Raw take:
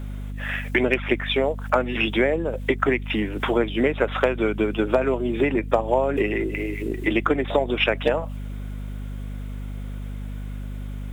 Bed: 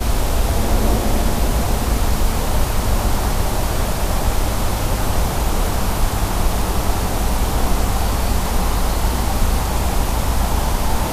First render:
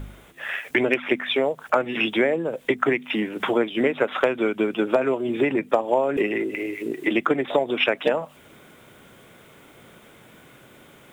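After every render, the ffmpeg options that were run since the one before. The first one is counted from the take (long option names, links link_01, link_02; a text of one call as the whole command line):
ffmpeg -i in.wav -af "bandreject=frequency=50:width_type=h:width=4,bandreject=frequency=100:width_type=h:width=4,bandreject=frequency=150:width_type=h:width=4,bandreject=frequency=200:width_type=h:width=4,bandreject=frequency=250:width_type=h:width=4" out.wav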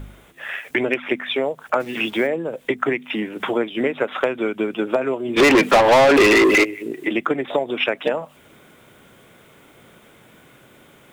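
ffmpeg -i in.wav -filter_complex "[0:a]asplit=3[link_01][link_02][link_03];[link_01]afade=type=out:start_time=1.79:duration=0.02[link_04];[link_02]acrusher=bits=8:dc=4:mix=0:aa=0.000001,afade=type=in:start_time=1.79:duration=0.02,afade=type=out:start_time=2.26:duration=0.02[link_05];[link_03]afade=type=in:start_time=2.26:duration=0.02[link_06];[link_04][link_05][link_06]amix=inputs=3:normalize=0,asplit=3[link_07][link_08][link_09];[link_07]afade=type=out:start_time=5.36:duration=0.02[link_10];[link_08]asplit=2[link_11][link_12];[link_12]highpass=frequency=720:poles=1,volume=33dB,asoftclip=type=tanh:threshold=-5.5dB[link_13];[link_11][link_13]amix=inputs=2:normalize=0,lowpass=frequency=4900:poles=1,volume=-6dB,afade=type=in:start_time=5.36:duration=0.02,afade=type=out:start_time=6.63:duration=0.02[link_14];[link_09]afade=type=in:start_time=6.63:duration=0.02[link_15];[link_10][link_14][link_15]amix=inputs=3:normalize=0" out.wav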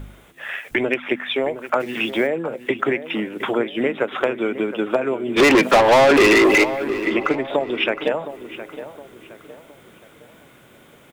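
ffmpeg -i in.wav -filter_complex "[0:a]asplit=2[link_01][link_02];[link_02]adelay=715,lowpass=frequency=2400:poles=1,volume=-12.5dB,asplit=2[link_03][link_04];[link_04]adelay=715,lowpass=frequency=2400:poles=1,volume=0.41,asplit=2[link_05][link_06];[link_06]adelay=715,lowpass=frequency=2400:poles=1,volume=0.41,asplit=2[link_07][link_08];[link_08]adelay=715,lowpass=frequency=2400:poles=1,volume=0.41[link_09];[link_01][link_03][link_05][link_07][link_09]amix=inputs=5:normalize=0" out.wav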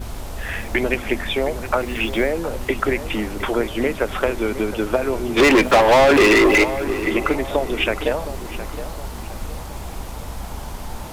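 ffmpeg -i in.wav -i bed.wav -filter_complex "[1:a]volume=-13dB[link_01];[0:a][link_01]amix=inputs=2:normalize=0" out.wav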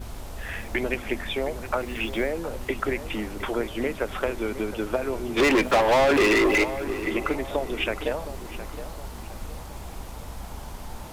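ffmpeg -i in.wav -af "volume=-6.5dB" out.wav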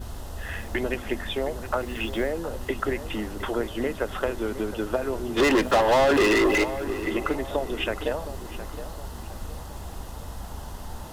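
ffmpeg -i in.wav -af "equalizer=frequency=78:width_type=o:width=0.29:gain=5.5,bandreject=frequency=2300:width=5.6" out.wav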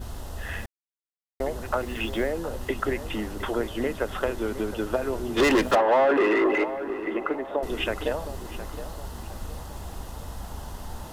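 ffmpeg -i in.wav -filter_complex "[0:a]asettb=1/sr,asplit=3[link_01][link_02][link_03];[link_01]atrim=end=5.754[link_04];[link_02]atrim=start=5.75:end=7.63,asetpts=PTS-STARTPTS,afade=type=in:duration=0.004:curve=qsin,afade=type=out:start_time=1.876:duration=0.004:curve=qsin,acrossover=split=220 2400:gain=0.0708 1 0.1[link_05][link_06][link_07];[link_05][link_06][link_07]amix=inputs=3:normalize=0[link_08];[link_03]atrim=start=7.626[link_09];[link_04][link_08]acrossfade=duration=0.004:curve1=hsin:curve2=qsin[link_10];[link_10][link_09]acrossfade=duration=0.004:curve1=qsin:curve2=hsin,asplit=3[link_11][link_12][link_13];[link_11]atrim=end=0.66,asetpts=PTS-STARTPTS,afade=type=out:start_time=0.656:duration=0.004:curve=hsin[link_14];[link_12]atrim=start=0.66:end=1.4,asetpts=PTS-STARTPTS,volume=0[link_15];[link_13]atrim=start=1.4,asetpts=PTS-STARTPTS,afade=type=in:duration=0.004:curve=hsin[link_16];[link_14][link_15][link_16]concat=n=3:v=0:a=1" out.wav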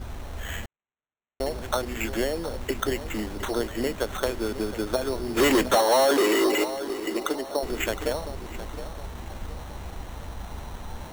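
ffmpeg -i in.wav -af "acrusher=samples=9:mix=1:aa=0.000001" out.wav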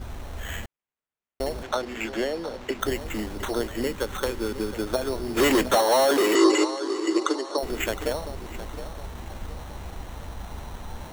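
ffmpeg -i in.wav -filter_complex "[0:a]asettb=1/sr,asplit=3[link_01][link_02][link_03];[link_01]atrim=end=1.634[link_04];[link_02]atrim=start=1.63:end=2.81,asetpts=PTS-STARTPTS,afade=type=in:duration=0.004:curve=qsin,afade=type=out:start_time=1.176:duration=0.004:curve=qsin,acrossover=split=170 6600:gain=0.251 1 0.224[link_05][link_06][link_07];[link_05][link_06][link_07]amix=inputs=3:normalize=0[link_08];[link_03]atrim=start=2.806[link_09];[link_04][link_08]acrossfade=duration=0.004:curve1=hsin:curve2=qsin[link_10];[link_10][link_09]acrossfade=duration=0.004:curve1=qsin:curve2=hsin,asettb=1/sr,asplit=3[link_11][link_12][link_13];[link_11]atrim=end=3.824[link_14];[link_12]atrim=start=3.82:end=4.76,asetpts=PTS-STARTPTS,afade=type=in:duration=0.004:curve=qsin,afade=type=out:start_time=0.936:duration=0.004:curve=qsin,asuperstop=centerf=670:order=4:qfactor=4.4[link_15];[link_13]atrim=start=4.756[link_16];[link_14][link_15]acrossfade=duration=0.004:curve1=hsin:curve2=qsin[link_17];[link_17][link_16]acrossfade=duration=0.004:curve1=qsin:curve2=hsin,asettb=1/sr,asplit=3[link_18][link_19][link_20];[link_18]atrim=end=6.354[link_21];[link_19]atrim=start=6.35:end=7.58,asetpts=PTS-STARTPTS,afade=type=in:duration=0.004:curve=qsin,afade=type=out:start_time=1.226:duration=0.004:curve=qsin,highpass=frequency=310:width=0.5412,highpass=frequency=310:width=1.3066,equalizer=frequency=330:width_type=q:width=4:gain=10,equalizer=frequency=680:width_type=q:width=4:gain=-6,equalizer=frequency=1100:width_type=q:width=4:gain=8,equalizer=frequency=2400:width_type=q:width=4:gain=-3,equalizer=frequency=4600:width_type=q:width=4:gain=7,equalizer=frequency=7000:width_type=q:width=4:gain=7,lowpass=frequency=8700:width=0.5412,lowpass=frequency=8700:width=1.3066[link_22];[link_20]atrim=start=7.576[link_23];[link_21][link_22]acrossfade=duration=0.004:curve1=hsin:curve2=qsin[link_24];[link_24][link_23]acrossfade=duration=0.004:curve1=qsin:curve2=hsin" out.wav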